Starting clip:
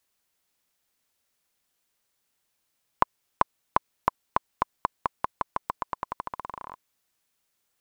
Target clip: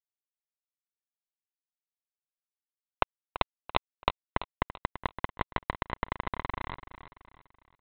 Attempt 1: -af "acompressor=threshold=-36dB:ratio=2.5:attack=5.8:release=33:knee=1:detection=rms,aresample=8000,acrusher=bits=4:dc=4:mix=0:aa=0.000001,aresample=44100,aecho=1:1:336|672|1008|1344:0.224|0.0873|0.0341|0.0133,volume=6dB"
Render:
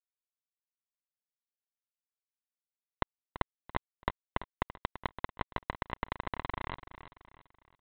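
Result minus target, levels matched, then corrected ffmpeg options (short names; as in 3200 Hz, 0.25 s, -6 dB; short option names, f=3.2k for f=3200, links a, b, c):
compressor: peak gain reduction +4 dB
-af "acompressor=threshold=-29dB:ratio=2.5:attack=5.8:release=33:knee=1:detection=rms,aresample=8000,acrusher=bits=4:dc=4:mix=0:aa=0.000001,aresample=44100,aecho=1:1:336|672|1008|1344:0.224|0.0873|0.0341|0.0133,volume=6dB"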